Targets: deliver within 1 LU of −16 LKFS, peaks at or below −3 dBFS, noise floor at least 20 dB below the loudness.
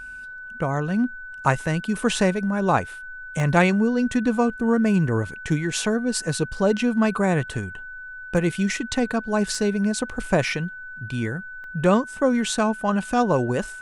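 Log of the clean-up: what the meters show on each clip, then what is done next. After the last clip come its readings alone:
number of dropouts 4; longest dropout 1.1 ms; interfering tone 1,500 Hz; level of the tone −35 dBFS; integrated loudness −23.0 LKFS; sample peak −5.0 dBFS; target loudness −16.0 LKFS
→ repair the gap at 0:03.40/0:08.37/0:09.55/0:11.64, 1.1 ms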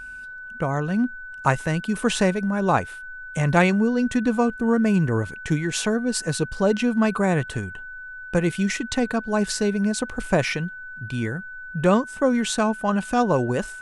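number of dropouts 0; interfering tone 1,500 Hz; level of the tone −35 dBFS
→ notch filter 1,500 Hz, Q 30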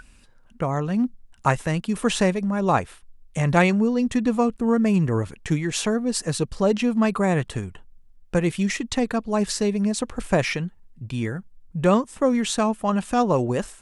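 interfering tone none found; integrated loudness −23.0 LKFS; sample peak −5.5 dBFS; target loudness −16.0 LKFS
→ level +7 dB
brickwall limiter −3 dBFS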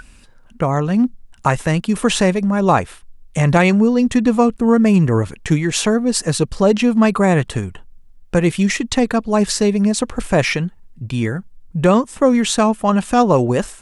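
integrated loudness −16.5 LKFS; sample peak −3.0 dBFS; background noise floor −46 dBFS

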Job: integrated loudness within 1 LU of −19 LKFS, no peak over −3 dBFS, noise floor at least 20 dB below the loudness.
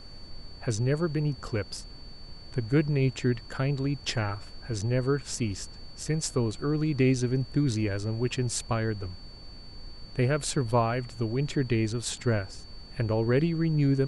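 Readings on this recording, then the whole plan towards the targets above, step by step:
interfering tone 4,500 Hz; level of the tone −49 dBFS; background noise floor −46 dBFS; target noise floor −49 dBFS; integrated loudness −28.5 LKFS; sample peak −13.0 dBFS; target loudness −19.0 LKFS
→ notch filter 4,500 Hz, Q 30
noise reduction from a noise print 6 dB
level +9.5 dB

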